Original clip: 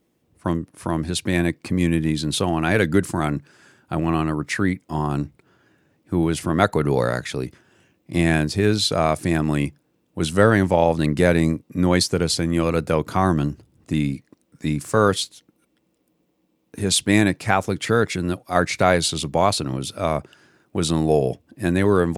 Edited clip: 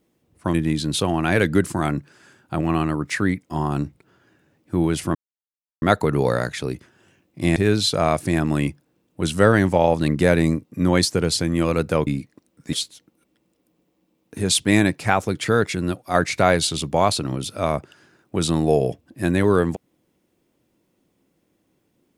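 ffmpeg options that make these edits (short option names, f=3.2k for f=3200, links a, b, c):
-filter_complex "[0:a]asplit=6[a][b][c][d][e][f];[a]atrim=end=0.542[g];[b]atrim=start=1.928:end=6.54,asetpts=PTS-STARTPTS,afade=t=out:st=4.608:d=0.004:c=hsin,apad=pad_dur=0.67[h];[c]atrim=start=6.54:end=8.282,asetpts=PTS-STARTPTS,afade=t=in:d=0.004:c=hsin[i];[d]atrim=start=8.538:end=13.052[j];[e]atrim=start=14.018:end=14.682[k];[f]atrim=start=15.138[l];[h][i]concat=n=2:v=0:a=1[m];[g][m]acrossfade=d=0.004:c1=hsin:c2=hsin[n];[n][j]acrossfade=d=0.004:c1=hsin:c2=hsin[o];[o][k]acrossfade=d=0.004:c1=hsin:c2=hsin[p];[p][l]acrossfade=d=0.004:c1=hsin:c2=hsin"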